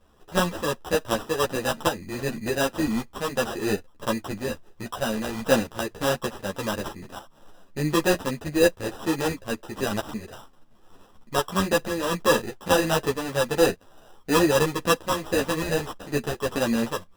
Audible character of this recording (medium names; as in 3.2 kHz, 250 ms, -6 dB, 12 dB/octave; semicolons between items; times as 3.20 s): tremolo saw up 1.6 Hz, depth 50%; aliases and images of a low sample rate 2.2 kHz, jitter 0%; a shimmering, thickened sound